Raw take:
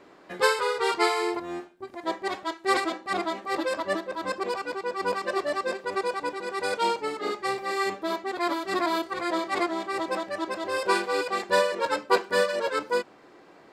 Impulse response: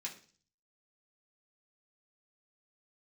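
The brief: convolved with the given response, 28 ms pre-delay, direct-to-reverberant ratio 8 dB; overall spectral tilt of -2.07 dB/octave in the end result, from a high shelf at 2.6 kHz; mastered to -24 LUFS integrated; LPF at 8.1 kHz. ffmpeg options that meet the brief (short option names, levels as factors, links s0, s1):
-filter_complex "[0:a]lowpass=8100,highshelf=f=2600:g=6,asplit=2[s0][s1];[1:a]atrim=start_sample=2205,adelay=28[s2];[s1][s2]afir=irnorm=-1:irlink=0,volume=0.473[s3];[s0][s3]amix=inputs=2:normalize=0,volume=1.26"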